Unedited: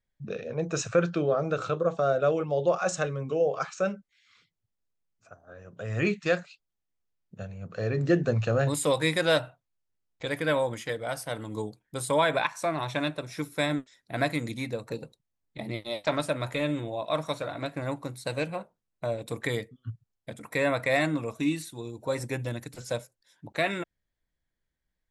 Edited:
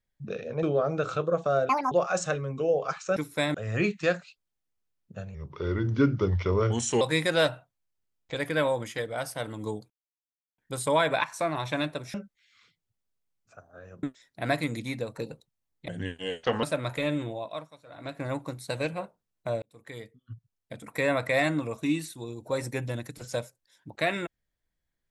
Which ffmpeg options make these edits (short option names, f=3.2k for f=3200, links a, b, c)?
-filter_complex "[0:a]asplit=16[a][b][c][d][e][f][g][h][i][j][k][l][m][n][o][p];[a]atrim=end=0.632[q];[b]atrim=start=1.158:end=2.224[r];[c]atrim=start=2.22:end=2.63,asetpts=PTS-STARTPTS,asetrate=80703,aresample=44100,atrim=end_sample=9880,asetpts=PTS-STARTPTS[s];[d]atrim=start=2.626:end=3.882[t];[e]atrim=start=13.368:end=13.752[u];[f]atrim=start=5.768:end=7.574[v];[g]atrim=start=7.57:end=8.92,asetpts=PTS-STARTPTS,asetrate=35721,aresample=44100[w];[h]atrim=start=8.916:end=11.81,asetpts=PTS-STARTPTS,afade=t=out:st=2.89:d=0.004:c=hsin,apad=pad_dur=0.68[x];[i]atrim=start=11.81:end=13.372,asetpts=PTS-STARTPTS,afade=t=in:d=0.004:c=hsin[y];[j]atrim=start=3.878:end=5.772[z];[k]atrim=start=13.748:end=15.604[aa];[l]atrim=start=15.6:end=16.2,asetpts=PTS-STARTPTS,asetrate=35280,aresample=44100[ab];[m]atrim=start=16.196:end=17.26,asetpts=PTS-STARTPTS,afade=t=out:st=0.664:d=0.4:silence=0.0891251[ac];[n]atrim=start=17.26:end=17.42,asetpts=PTS-STARTPTS,volume=-21dB[ad];[o]atrim=start=17.42:end=19.19,asetpts=PTS-STARTPTS,afade=t=in:d=0.4:silence=0.0891251,afade=t=out:st=1.766:d=0.004:c=hsin[ae];[p]atrim=start=19.19,asetpts=PTS-STARTPTS,afade=t=in:d=1.32[af];[q][r]acrossfade=d=0.004:c1=hsin:c2=hsin[ag];[ag][s]acrossfade=d=0.004:c1=hsin:c2=hsin[ah];[ah][t]acrossfade=d=0.004:c1=hsin:c2=hsin[ai];[ai][u]acrossfade=d=0.004:c1=hsin:c2=hsin[aj];[aj][v]acrossfade=d=0.004:c1=hsin:c2=hsin[ak];[ak][w]acrossfade=d=0.004:c1=hsin:c2=hsin[al];[x][y]concat=n=2:v=0:a=1[am];[al][am]acrossfade=d=0.004:c1=hsin:c2=hsin[an];[an][z]acrossfade=d=0.004:c1=hsin:c2=hsin[ao];[ao][aa]acrossfade=d=0.004:c1=hsin:c2=hsin[ap];[ap][ab]acrossfade=d=0.004:c1=hsin:c2=hsin[aq];[ac][ad][ae][af]concat=n=4:v=0:a=1[ar];[aq][ar]acrossfade=d=0.004:c1=hsin:c2=hsin"